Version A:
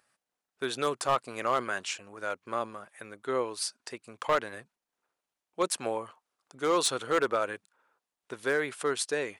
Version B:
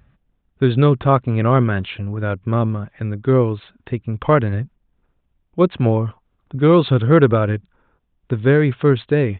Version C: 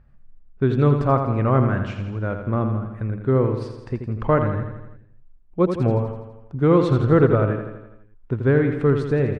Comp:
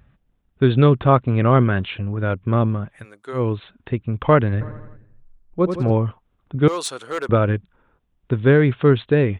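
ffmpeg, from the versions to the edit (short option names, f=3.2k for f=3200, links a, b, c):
-filter_complex "[0:a]asplit=2[a][b];[1:a]asplit=4[c][d][e][f];[c]atrim=end=3.06[g];[a]atrim=start=2.9:end=3.48[h];[d]atrim=start=3.32:end=4.612[i];[2:a]atrim=start=4.608:end=5.902[j];[e]atrim=start=5.898:end=6.682[k];[b]atrim=start=6.678:end=7.292[l];[f]atrim=start=7.288[m];[g][h]acrossfade=d=0.16:c1=tri:c2=tri[n];[n][i]acrossfade=d=0.16:c1=tri:c2=tri[o];[o][j]acrossfade=d=0.004:c1=hsin:c2=hsin[p];[p][k]acrossfade=d=0.004:c1=hsin:c2=hsin[q];[q][l]acrossfade=d=0.004:c1=hsin:c2=hsin[r];[r][m]acrossfade=d=0.004:c1=hsin:c2=hsin"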